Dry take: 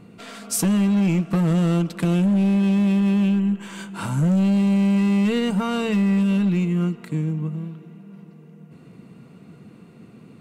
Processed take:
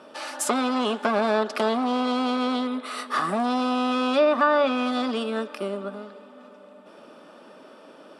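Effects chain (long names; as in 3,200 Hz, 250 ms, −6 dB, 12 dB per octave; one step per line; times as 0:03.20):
loudspeaker in its box 460–7,300 Hz, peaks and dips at 480 Hz +5 dB, 940 Hz +8 dB, 1,500 Hz −6 dB, 2,700 Hz −4 dB, 5,100 Hz −6 dB
treble cut that deepens with the level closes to 850 Hz, closed at −18 dBFS
speed change +27%
level +6 dB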